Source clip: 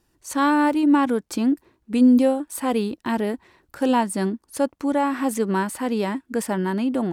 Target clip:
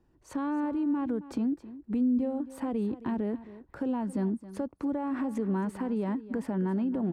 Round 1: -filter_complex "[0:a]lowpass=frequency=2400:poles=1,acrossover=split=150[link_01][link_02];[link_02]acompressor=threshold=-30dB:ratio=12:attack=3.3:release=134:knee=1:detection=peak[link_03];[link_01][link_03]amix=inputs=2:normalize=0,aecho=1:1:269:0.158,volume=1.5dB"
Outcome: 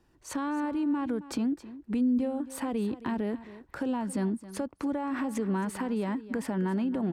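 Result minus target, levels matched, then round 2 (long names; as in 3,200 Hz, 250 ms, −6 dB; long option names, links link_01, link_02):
2,000 Hz band +5.5 dB
-filter_complex "[0:a]lowpass=frequency=620:poles=1,acrossover=split=150[link_01][link_02];[link_02]acompressor=threshold=-30dB:ratio=12:attack=3.3:release=134:knee=1:detection=peak[link_03];[link_01][link_03]amix=inputs=2:normalize=0,aecho=1:1:269:0.158,volume=1.5dB"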